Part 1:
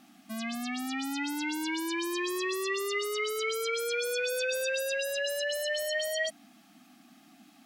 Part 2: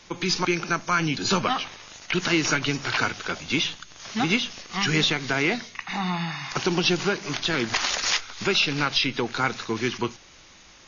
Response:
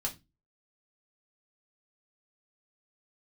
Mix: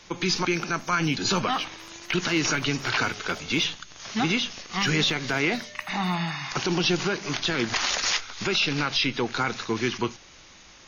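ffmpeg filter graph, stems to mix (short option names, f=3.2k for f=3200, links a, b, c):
-filter_complex "[0:a]equalizer=f=5.7k:w=1.9:g=-7,volume=-18.5dB,asplit=3[a][b][c];[a]atrim=end=3.66,asetpts=PTS-STARTPTS,afade=t=out:st=3.656:d=0.004:c=hsin[d];[b]atrim=start=3.66:end=4.81,asetpts=PTS-STARTPTS,volume=0[e];[c]atrim=start=4.81,asetpts=PTS-STARTPTS,afade=t=in:d=0.004:c=hsin[f];[d][e][f]concat=n=3:v=0:a=1,asplit=2[g][h];[h]volume=-14dB[i];[1:a]volume=0.5dB[j];[2:a]atrim=start_sample=2205[k];[i][k]afir=irnorm=-1:irlink=0[l];[g][j][l]amix=inputs=3:normalize=0,alimiter=limit=-14.5dB:level=0:latency=1:release=14"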